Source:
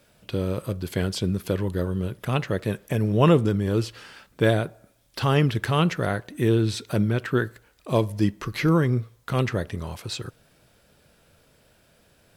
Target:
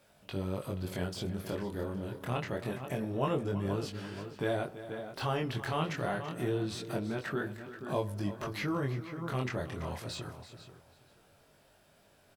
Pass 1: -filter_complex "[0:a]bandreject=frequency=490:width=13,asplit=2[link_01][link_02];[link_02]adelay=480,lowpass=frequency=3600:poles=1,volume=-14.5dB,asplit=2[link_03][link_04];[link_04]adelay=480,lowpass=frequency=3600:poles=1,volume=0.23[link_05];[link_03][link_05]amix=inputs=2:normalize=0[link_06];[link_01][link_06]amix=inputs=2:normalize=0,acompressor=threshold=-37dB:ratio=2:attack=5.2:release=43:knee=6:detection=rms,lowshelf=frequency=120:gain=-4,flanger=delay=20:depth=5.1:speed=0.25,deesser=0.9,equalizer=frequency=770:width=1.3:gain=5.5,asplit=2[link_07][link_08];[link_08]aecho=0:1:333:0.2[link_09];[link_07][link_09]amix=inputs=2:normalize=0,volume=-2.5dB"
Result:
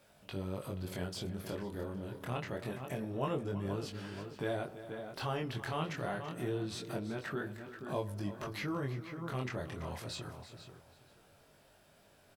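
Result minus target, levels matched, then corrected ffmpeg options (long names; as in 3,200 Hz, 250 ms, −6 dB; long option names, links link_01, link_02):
downward compressor: peak gain reduction +4 dB
-filter_complex "[0:a]bandreject=frequency=490:width=13,asplit=2[link_01][link_02];[link_02]adelay=480,lowpass=frequency=3600:poles=1,volume=-14.5dB,asplit=2[link_03][link_04];[link_04]adelay=480,lowpass=frequency=3600:poles=1,volume=0.23[link_05];[link_03][link_05]amix=inputs=2:normalize=0[link_06];[link_01][link_06]amix=inputs=2:normalize=0,acompressor=threshold=-29dB:ratio=2:attack=5.2:release=43:knee=6:detection=rms,lowshelf=frequency=120:gain=-4,flanger=delay=20:depth=5.1:speed=0.25,deesser=0.9,equalizer=frequency=770:width=1.3:gain=5.5,asplit=2[link_07][link_08];[link_08]aecho=0:1:333:0.2[link_09];[link_07][link_09]amix=inputs=2:normalize=0,volume=-2.5dB"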